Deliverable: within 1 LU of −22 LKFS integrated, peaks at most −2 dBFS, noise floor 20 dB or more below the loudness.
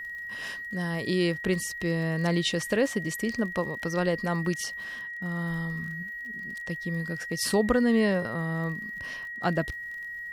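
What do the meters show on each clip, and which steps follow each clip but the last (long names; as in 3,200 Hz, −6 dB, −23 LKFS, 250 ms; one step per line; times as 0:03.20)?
crackle rate 39 per second; interfering tone 1,900 Hz; level of the tone −35 dBFS; integrated loudness −29.0 LKFS; sample peak −12.5 dBFS; target loudness −22.0 LKFS
→ click removal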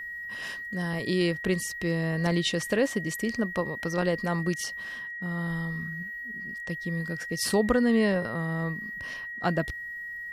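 crackle rate 0 per second; interfering tone 1,900 Hz; level of the tone −35 dBFS
→ notch filter 1,900 Hz, Q 30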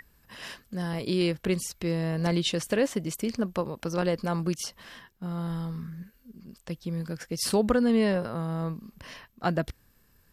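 interfering tone none found; integrated loudness −29.0 LKFS; sample peak −12.5 dBFS; target loudness −22.0 LKFS
→ level +7 dB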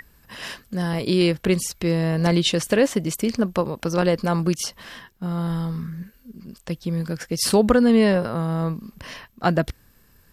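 integrated loudness −22.0 LKFS; sample peak −5.5 dBFS; background noise floor −57 dBFS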